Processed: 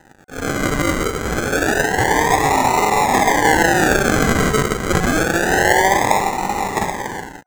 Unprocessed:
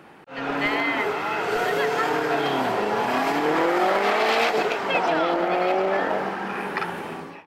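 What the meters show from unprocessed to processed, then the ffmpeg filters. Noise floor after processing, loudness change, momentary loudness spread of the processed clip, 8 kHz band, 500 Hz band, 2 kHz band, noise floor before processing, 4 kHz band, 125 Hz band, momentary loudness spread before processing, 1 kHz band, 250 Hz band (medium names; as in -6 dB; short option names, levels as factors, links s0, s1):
-39 dBFS, +6.5 dB, 8 LU, +20.5 dB, +4.0 dB, +8.0 dB, -42 dBFS, +5.0 dB, +16.0 dB, 8 LU, +7.0 dB, +8.0 dB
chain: -af "acrusher=samples=39:mix=1:aa=0.000001:lfo=1:lforange=23.4:lforate=0.27,aeval=exprs='sgn(val(0))*max(abs(val(0))-0.00316,0)':c=same,superequalizer=9b=2.82:10b=1.58:11b=3.16:15b=2.24,volume=1.68"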